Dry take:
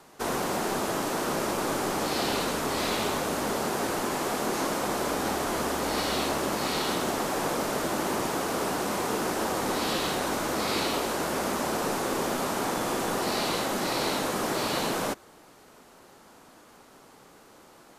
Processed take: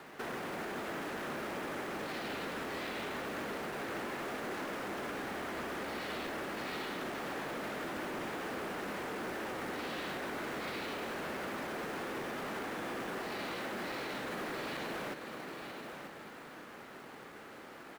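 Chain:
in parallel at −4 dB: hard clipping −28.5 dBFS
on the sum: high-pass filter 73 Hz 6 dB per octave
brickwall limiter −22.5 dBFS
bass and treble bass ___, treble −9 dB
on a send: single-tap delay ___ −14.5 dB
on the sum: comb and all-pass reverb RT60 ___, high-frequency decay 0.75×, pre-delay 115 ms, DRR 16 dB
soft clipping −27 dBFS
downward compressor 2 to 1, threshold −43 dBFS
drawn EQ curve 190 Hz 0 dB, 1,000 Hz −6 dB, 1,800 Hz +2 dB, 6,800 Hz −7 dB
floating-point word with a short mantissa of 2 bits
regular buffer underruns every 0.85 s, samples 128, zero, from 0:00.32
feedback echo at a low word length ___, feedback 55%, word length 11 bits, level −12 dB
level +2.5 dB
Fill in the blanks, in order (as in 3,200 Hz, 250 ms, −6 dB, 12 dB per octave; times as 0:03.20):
−5 dB, 941 ms, 4.1 s, 577 ms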